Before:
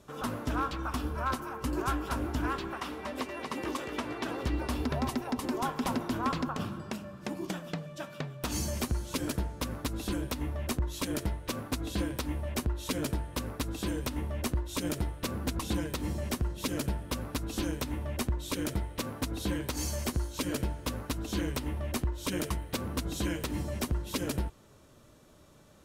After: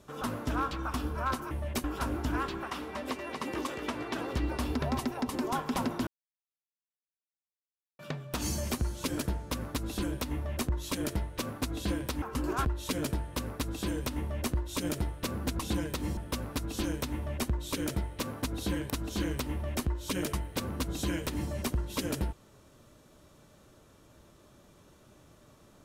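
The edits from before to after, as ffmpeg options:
ffmpeg -i in.wav -filter_complex "[0:a]asplit=9[link_01][link_02][link_03][link_04][link_05][link_06][link_07][link_08][link_09];[link_01]atrim=end=1.512[link_10];[link_02]atrim=start=12.318:end=12.652[link_11];[link_03]atrim=start=1.938:end=6.17,asetpts=PTS-STARTPTS,afade=type=out:start_time=4.228:duration=0.004:curve=hsin[link_12];[link_04]atrim=start=6.17:end=8.09,asetpts=PTS-STARTPTS,volume=0[link_13];[link_05]atrim=start=8.09:end=12.322,asetpts=PTS-STARTPTS,afade=type=in:duration=0.004:curve=hsin[link_14];[link_06]atrim=start=1.508:end=1.942[link_15];[link_07]atrim=start=12.648:end=16.172[link_16];[link_08]atrim=start=16.958:end=19.692[link_17];[link_09]atrim=start=21.068[link_18];[link_10][link_11]acrossfade=duration=0.004:curve1=hsin:curve2=hsin[link_19];[link_12][link_13][link_14]concat=n=3:v=0:a=1[link_20];[link_19][link_20]acrossfade=duration=0.004:curve1=hsin:curve2=hsin[link_21];[link_21][link_15]acrossfade=duration=0.004:curve1=hsin:curve2=hsin[link_22];[link_22][link_16]acrossfade=duration=0.004:curve1=hsin:curve2=hsin[link_23];[link_23][link_17]acrossfade=duration=0.004:curve1=hsin:curve2=hsin[link_24];[link_24][link_18]acrossfade=duration=0.004:curve1=hsin:curve2=hsin" out.wav

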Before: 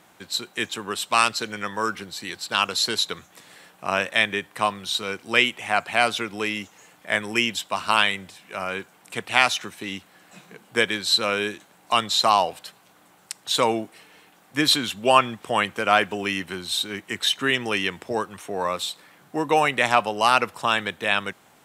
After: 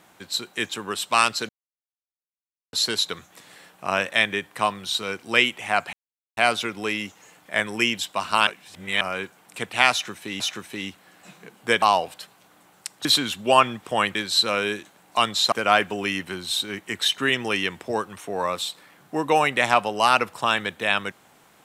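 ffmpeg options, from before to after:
ffmpeg -i in.wav -filter_complex "[0:a]asplit=11[link_01][link_02][link_03][link_04][link_05][link_06][link_07][link_08][link_09][link_10][link_11];[link_01]atrim=end=1.49,asetpts=PTS-STARTPTS,afade=type=out:start_time=1.486:duration=0.004:curve=hsin[link_12];[link_02]atrim=start=1.49:end=2.73,asetpts=PTS-STARTPTS,volume=0[link_13];[link_03]atrim=start=2.73:end=5.93,asetpts=PTS-STARTPTS,afade=type=in:duration=0.004:curve=hsin,afade=type=out:start_time=3.196:duration=0.004:curve=hsin,apad=pad_dur=0.44[link_14];[link_04]atrim=start=5.93:end=8.032,asetpts=PTS-STARTPTS,afade=type=in:duration=0.004:curve=hsin[link_15];[link_05]atrim=start=8.028:end=8.572,asetpts=PTS-STARTPTS,areverse[link_16];[link_06]atrim=start=8.568:end=9.962[link_17];[link_07]atrim=start=9.478:end=10.902[link_18];[link_08]atrim=start=12.268:end=13.502[link_19];[link_09]atrim=start=14.628:end=15.732[link_20];[link_10]atrim=start=10.898:end=12.272[link_21];[link_11]atrim=start=15.728[link_22];[link_12][link_13][link_14][link_15]concat=n=4:v=0:a=1[link_23];[link_23][link_16]acrossfade=duration=0.004:curve1=hsin:curve2=hsin[link_24];[link_24][link_17]acrossfade=duration=0.004:curve1=hsin:curve2=hsin[link_25];[link_25][link_18]acrossfade=duration=0.004:curve1=hsin:curve2=hsin[link_26];[link_26][link_19]acrossfade=duration=0.004:curve1=hsin:curve2=hsin[link_27];[link_27][link_20]acrossfade=duration=0.004:curve1=hsin:curve2=hsin[link_28];[link_28][link_21]acrossfade=duration=0.004:curve1=hsin:curve2=hsin[link_29];[link_29][link_22]acrossfade=duration=0.004:curve1=hsin:curve2=hsin" out.wav

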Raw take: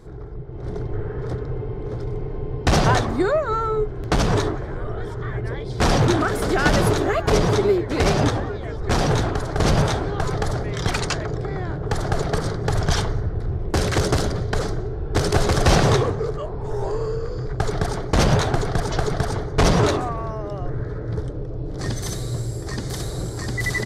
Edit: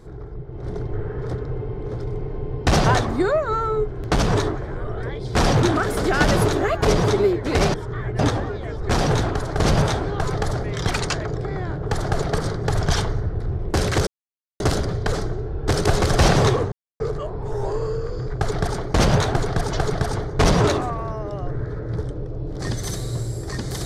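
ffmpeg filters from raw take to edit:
ffmpeg -i in.wav -filter_complex "[0:a]asplit=6[link_01][link_02][link_03][link_04][link_05][link_06];[link_01]atrim=end=5.032[link_07];[link_02]atrim=start=5.478:end=8.192[link_08];[link_03]atrim=start=5.028:end=5.482[link_09];[link_04]atrim=start=8.188:end=14.07,asetpts=PTS-STARTPTS,afade=type=out:start_time=5.878:duration=0.004:curve=hsin,apad=pad_dur=0.53[link_10];[link_05]atrim=start=14.07:end=16.19,asetpts=PTS-STARTPTS,afade=type=in:duration=0.004:curve=hsin,afade=type=out:start_time=2.116:duration=0.004:curve=hsin,apad=pad_dur=0.28[link_11];[link_06]atrim=start=16.19,asetpts=PTS-STARTPTS,afade=type=in:duration=0.004:curve=hsin[link_12];[link_07][link_08]acrossfade=duration=0.004:curve1=hsin:curve2=hsin[link_13];[link_13][link_09]acrossfade=duration=0.004:curve1=hsin:curve2=hsin[link_14];[link_10][link_11][link_12]concat=n=3:v=0:a=1[link_15];[link_14][link_15]acrossfade=duration=0.004:curve1=hsin:curve2=hsin" out.wav

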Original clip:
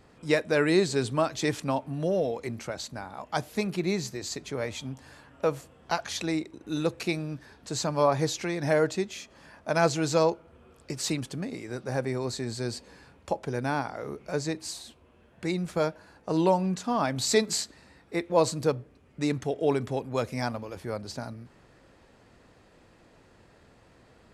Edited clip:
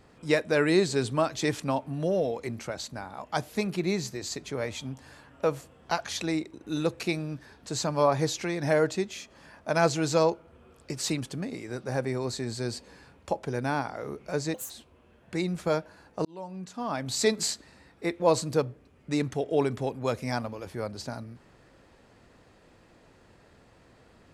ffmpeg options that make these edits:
ffmpeg -i in.wav -filter_complex "[0:a]asplit=4[link_01][link_02][link_03][link_04];[link_01]atrim=end=14.544[link_05];[link_02]atrim=start=14.54:end=14.8,asetpts=PTS-STARTPTS,asetrate=71442,aresample=44100[link_06];[link_03]atrim=start=14.796:end=16.35,asetpts=PTS-STARTPTS,afade=type=out:start_time=1.55:duration=0.004:curve=hsin[link_07];[link_04]atrim=start=16.35,asetpts=PTS-STARTPTS,afade=type=in:duration=1.17[link_08];[link_05][link_06]acrossfade=duration=0.004:curve1=hsin:curve2=hsin[link_09];[link_07][link_08]concat=n=2:v=0:a=1[link_10];[link_09][link_10]acrossfade=duration=0.004:curve1=hsin:curve2=hsin" out.wav

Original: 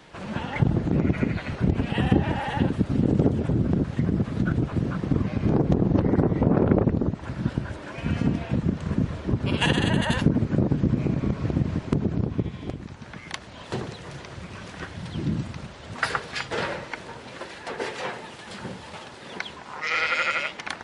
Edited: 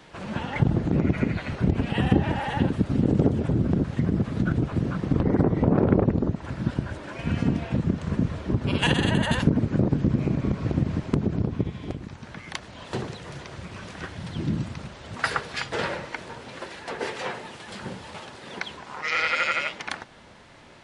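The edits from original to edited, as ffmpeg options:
ffmpeg -i in.wav -filter_complex "[0:a]asplit=2[link_01][link_02];[link_01]atrim=end=5.202[link_03];[link_02]atrim=start=5.988[link_04];[link_03][link_04]acrossfade=duration=0.004:curve1=hsin:curve2=hsin" out.wav

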